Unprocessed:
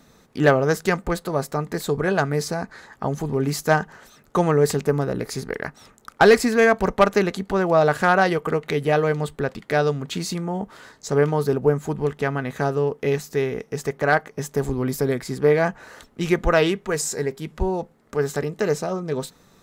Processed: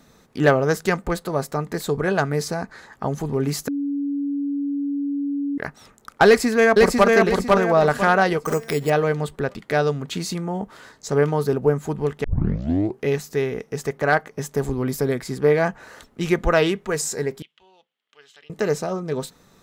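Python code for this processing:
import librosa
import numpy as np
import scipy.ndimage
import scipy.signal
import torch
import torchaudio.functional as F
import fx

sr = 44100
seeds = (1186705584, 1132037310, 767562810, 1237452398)

y = fx.echo_throw(x, sr, start_s=6.26, length_s=0.87, ms=500, feedback_pct=35, wet_db=-1.5)
y = fx.resample_bad(y, sr, factor=6, down='none', up='hold', at=(8.45, 8.9))
y = fx.bandpass_q(y, sr, hz=3100.0, q=6.2, at=(17.42, 18.5))
y = fx.edit(y, sr, fx.bleep(start_s=3.68, length_s=1.9, hz=283.0, db=-21.5),
    fx.tape_start(start_s=12.24, length_s=0.81), tone=tone)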